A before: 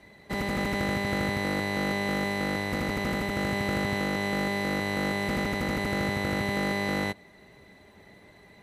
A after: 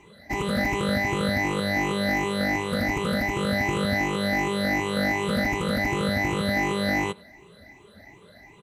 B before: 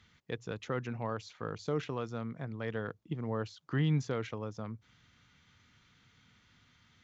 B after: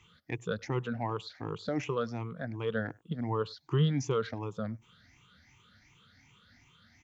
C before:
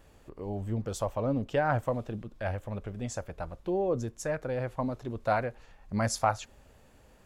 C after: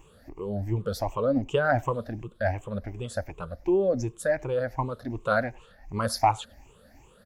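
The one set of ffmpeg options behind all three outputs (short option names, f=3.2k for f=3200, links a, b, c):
-filter_complex "[0:a]afftfilt=real='re*pow(10,18/40*sin(2*PI*(0.7*log(max(b,1)*sr/1024/100)/log(2)-(2.7)*(pts-256)/sr)))':imag='im*pow(10,18/40*sin(2*PI*(0.7*log(max(b,1)*sr/1024/100)/log(2)-(2.7)*(pts-256)/sr)))':win_size=1024:overlap=0.75,asplit=2[a][b];[b]adelay=100,highpass=300,lowpass=3.4k,asoftclip=type=hard:threshold=-18dB,volume=-26dB[c];[a][c]amix=inputs=2:normalize=0"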